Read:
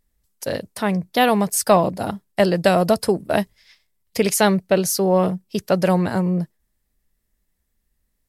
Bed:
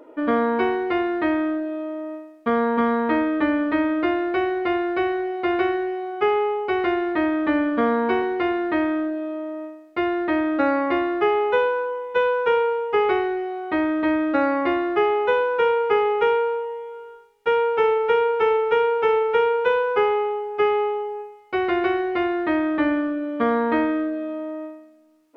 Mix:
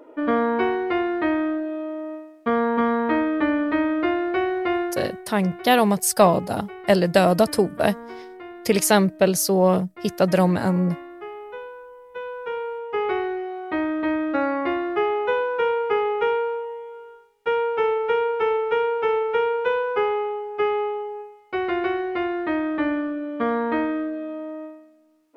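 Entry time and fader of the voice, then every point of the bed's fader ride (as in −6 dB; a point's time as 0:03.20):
4.50 s, −0.5 dB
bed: 0:04.82 −0.5 dB
0:05.26 −16.5 dB
0:11.90 −16.5 dB
0:13.23 −2.5 dB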